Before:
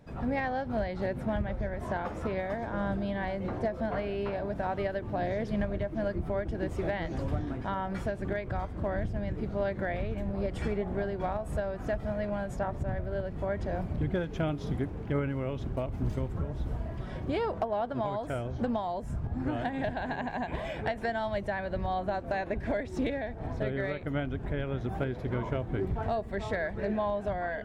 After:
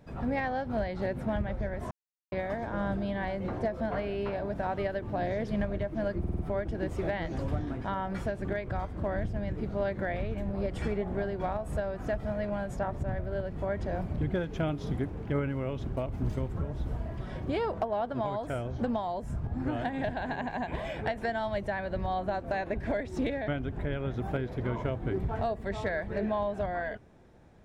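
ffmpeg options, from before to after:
-filter_complex "[0:a]asplit=8[a][b][c][d][e][f][g][h];[a]atrim=end=1.91,asetpts=PTS-STARTPTS,afade=t=out:st=1.906:d=0.004:c=hsin[i];[b]atrim=start=1.91:end=2.32,asetpts=PTS-STARTPTS,volume=0[j];[c]atrim=start=2.32:end=6.242,asetpts=PTS-STARTPTS,afade=t=in:d=0.004:c=hsin[k];[d]atrim=start=6.188:end=6.242[l];[e]atrim=start=6.188:end=6.242[m];[f]atrim=start=6.188:end=6.242[n];[g]atrim=start=6.188:end=23.282[o];[h]atrim=start=24.148[p];[i][j][k]concat=n=3:v=0:a=1[q];[q][l]acrossfade=d=0.004:c1=hsin:c2=hsin[r];[r][m]acrossfade=d=0.004:c1=hsin:c2=hsin[s];[s][n]acrossfade=d=0.004:c1=hsin:c2=hsin[t];[t][o]acrossfade=d=0.004:c1=hsin:c2=hsin[u];[u][p]acrossfade=d=0.004:c1=hsin:c2=hsin"

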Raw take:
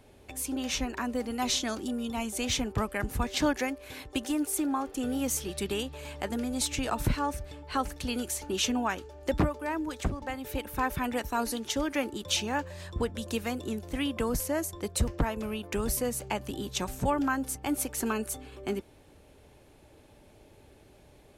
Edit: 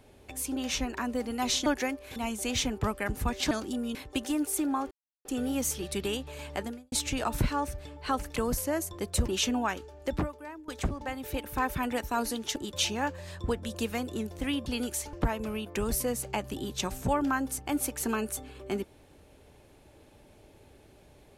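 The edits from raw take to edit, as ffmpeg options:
-filter_complex "[0:a]asplit=13[a][b][c][d][e][f][g][h][i][j][k][l][m];[a]atrim=end=1.662[n];[b]atrim=start=3.448:end=3.952[o];[c]atrim=start=2.098:end=3.452[p];[d]atrim=start=1.658:end=2.102[q];[e]atrim=start=3.948:end=4.91,asetpts=PTS-STARTPTS,afade=t=out:st=0.958:d=0.004:c=hsin,apad=pad_dur=0.34[r];[f]atrim=start=4.91:end=6.58,asetpts=PTS-STARTPTS,afade=t=in:d=0.004:c=hsin,afade=t=out:st=1.37:d=0.3:c=qua[s];[g]atrim=start=6.58:end=8.022,asetpts=PTS-STARTPTS,afade=t=in:d=0.004:c=hsin[t];[h]atrim=start=14.178:end=15.102[u];[i]atrim=start=8.488:end=9.89,asetpts=PTS-STARTPTS,afade=t=out:st=0.522:d=0.88:silence=0.112202[v];[j]atrim=start=9.89:end=11.772,asetpts=PTS-STARTPTS,afade=t=in:d=0.004:c=hsin:silence=0.112202[w];[k]atrim=start=12.078:end=14.182[x];[l]atrim=start=8.018:end=8.492[y];[m]atrim=start=15.098[z];[n][o]acrossfade=d=0.004:c1=hsin:c2=hsin[aa];[aa][p]acrossfade=d=0.004:c1=hsin:c2=hsin[ab];[ab][q]acrossfade=d=0.004:c1=hsin:c2=hsin[ac];[r][s][t]concat=n=3:v=0:a=1[ad];[ac][ad]acrossfade=d=0.004:c1=hsin:c2=hsin[ae];[ae][u]acrossfade=d=0.004:c1=hsin:c2=hsin[af];[v][w]concat=n=2:v=0:a=1[ag];[af][ag]acrossfade=d=0.004:c1=hsin:c2=hsin[ah];[ah][x]acrossfade=d=0.004:c1=hsin:c2=hsin[ai];[ai][y]acrossfade=d=0.004:c1=hsin:c2=hsin[aj];[aj][z]acrossfade=d=0.004:c1=hsin:c2=hsin"

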